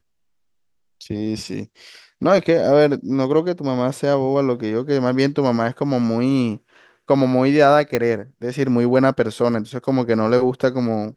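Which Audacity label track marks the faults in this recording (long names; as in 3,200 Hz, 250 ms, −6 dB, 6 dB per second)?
7.950000	7.950000	click −5 dBFS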